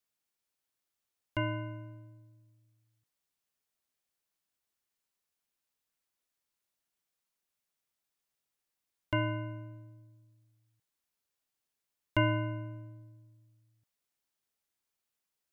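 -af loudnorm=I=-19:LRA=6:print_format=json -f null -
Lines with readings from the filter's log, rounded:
"input_i" : "-35.6",
"input_tp" : "-13.2",
"input_lra" : "16.3",
"input_thresh" : "-48.6",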